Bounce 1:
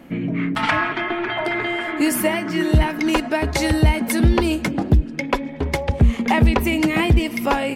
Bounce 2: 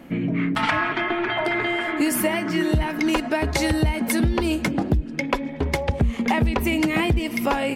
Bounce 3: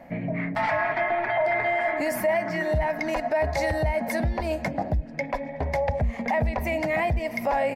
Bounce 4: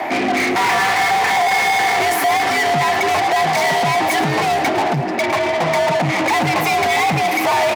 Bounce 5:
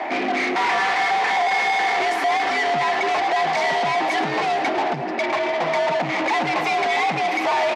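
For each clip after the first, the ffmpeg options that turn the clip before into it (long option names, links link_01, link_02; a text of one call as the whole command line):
ffmpeg -i in.wav -af "acompressor=threshold=-17dB:ratio=6" out.wav
ffmpeg -i in.wav -af "firequalizer=gain_entry='entry(140,0);entry(360,-10);entry(620,12);entry(1300,-5);entry(1900,6);entry(3000,-9);entry(4800,1);entry(9000,-3);entry(13000,4)':delay=0.05:min_phase=1,alimiter=limit=-12.5dB:level=0:latency=1:release=16,highshelf=frequency=7000:gain=-10.5,volume=-3.5dB" out.wav
ffmpeg -i in.wav -filter_complex "[0:a]asplit=2[link_01][link_02];[link_02]highpass=frequency=720:poles=1,volume=32dB,asoftclip=type=tanh:threshold=-16dB[link_03];[link_01][link_03]amix=inputs=2:normalize=0,lowpass=frequency=5900:poles=1,volume=-6dB,asplit=7[link_04][link_05][link_06][link_07][link_08][link_09][link_10];[link_05]adelay=109,afreqshift=43,volume=-14dB[link_11];[link_06]adelay=218,afreqshift=86,volume=-18.6dB[link_12];[link_07]adelay=327,afreqshift=129,volume=-23.2dB[link_13];[link_08]adelay=436,afreqshift=172,volume=-27.7dB[link_14];[link_09]adelay=545,afreqshift=215,volume=-32.3dB[link_15];[link_10]adelay=654,afreqshift=258,volume=-36.9dB[link_16];[link_04][link_11][link_12][link_13][link_14][link_15][link_16]amix=inputs=7:normalize=0,afreqshift=84,volume=4.5dB" out.wav
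ffmpeg -i in.wav -af "highpass=240,lowpass=4900,volume=-4dB" out.wav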